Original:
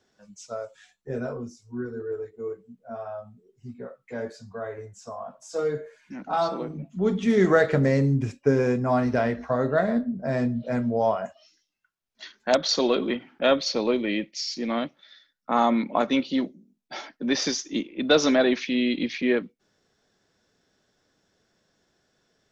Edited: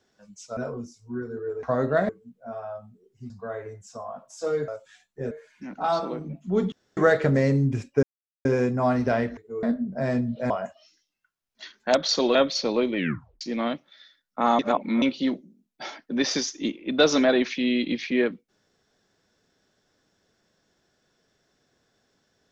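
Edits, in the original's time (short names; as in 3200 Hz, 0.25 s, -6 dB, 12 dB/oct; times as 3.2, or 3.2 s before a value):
0.57–1.2 move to 5.8
2.26–2.52 swap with 9.44–9.9
3.73–4.42 cut
7.21–7.46 room tone
8.52 insert silence 0.42 s
10.77–11.1 cut
12.95–13.46 cut
14.08 tape stop 0.44 s
15.7–16.13 reverse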